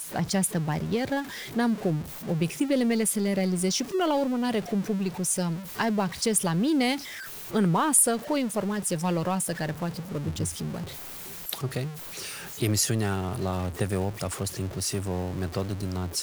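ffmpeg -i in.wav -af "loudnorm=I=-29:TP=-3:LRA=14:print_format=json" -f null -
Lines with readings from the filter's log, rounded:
"input_i" : "-27.8",
"input_tp" : "-7.4",
"input_lra" : "5.1",
"input_thresh" : "-37.8",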